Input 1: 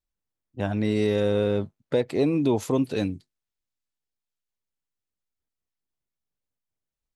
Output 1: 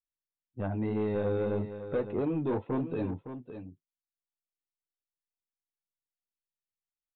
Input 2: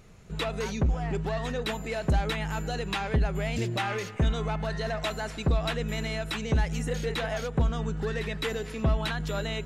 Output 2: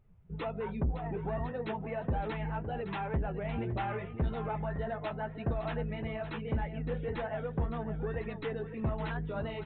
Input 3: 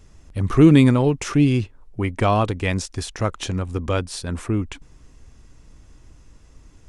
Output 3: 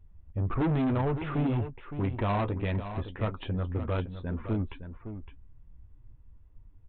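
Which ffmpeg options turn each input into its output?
-filter_complex "[0:a]afftdn=nr=15:nf=-39,lowpass=f=1400:p=1,equalizer=f=910:t=o:w=0.29:g=5,asplit=2[s0][s1];[s1]volume=11.2,asoftclip=hard,volume=0.0891,volume=0.335[s2];[s0][s2]amix=inputs=2:normalize=0,flanger=delay=8.5:depth=4:regen=-38:speed=1.8:shape=sinusoidal,aresample=8000,asoftclip=type=tanh:threshold=0.0841,aresample=44100,aecho=1:1:562:0.299,volume=0.75"

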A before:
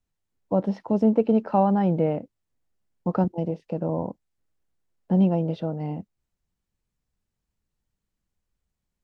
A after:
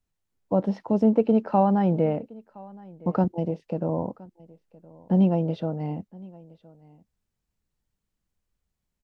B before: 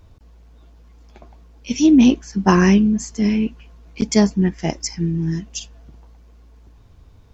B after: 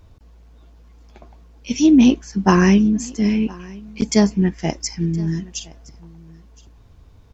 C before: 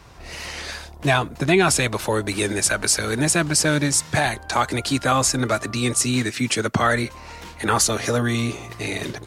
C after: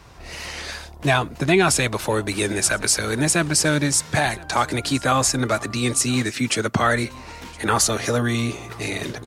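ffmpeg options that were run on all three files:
-af "aecho=1:1:1017:0.0708"

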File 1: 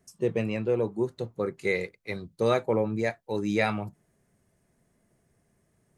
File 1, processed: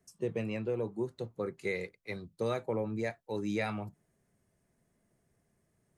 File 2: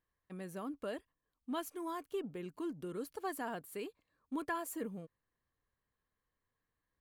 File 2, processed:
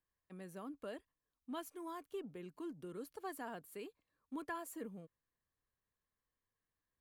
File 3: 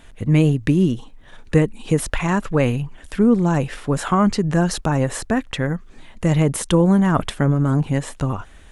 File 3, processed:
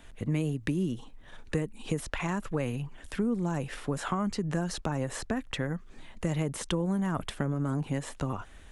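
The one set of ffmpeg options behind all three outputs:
-filter_complex "[0:a]acrossover=split=170|7800[s0][s1][s2];[s0]acompressor=threshold=0.0251:ratio=4[s3];[s1]acompressor=threshold=0.0631:ratio=4[s4];[s2]acompressor=threshold=0.00631:ratio=4[s5];[s3][s4][s5]amix=inputs=3:normalize=0,volume=0.531"

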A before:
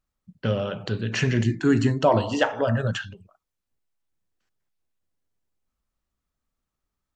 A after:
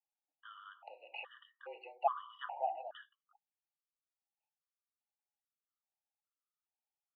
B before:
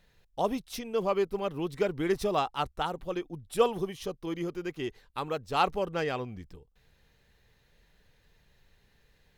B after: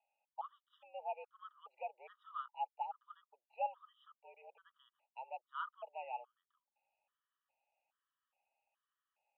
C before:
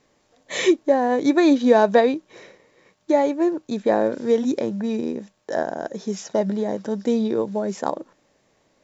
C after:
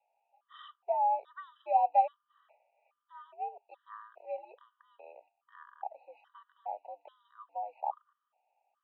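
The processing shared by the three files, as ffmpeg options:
-filter_complex "[0:a]asplit=3[s0][s1][s2];[s0]bandpass=f=730:t=q:w=8,volume=1[s3];[s1]bandpass=f=1090:t=q:w=8,volume=0.501[s4];[s2]bandpass=f=2440:t=q:w=8,volume=0.355[s5];[s3][s4][s5]amix=inputs=3:normalize=0,highpass=f=450:t=q:w=0.5412,highpass=f=450:t=q:w=1.307,lowpass=f=3100:t=q:w=0.5176,lowpass=f=3100:t=q:w=0.7071,lowpass=f=3100:t=q:w=1.932,afreqshift=100,afftfilt=real='re*gt(sin(2*PI*1.2*pts/sr)*(1-2*mod(floor(b*sr/1024/970),2)),0)':imag='im*gt(sin(2*PI*1.2*pts/sr)*(1-2*mod(floor(b*sr/1024/970),2)),0)':win_size=1024:overlap=0.75,volume=0.794"

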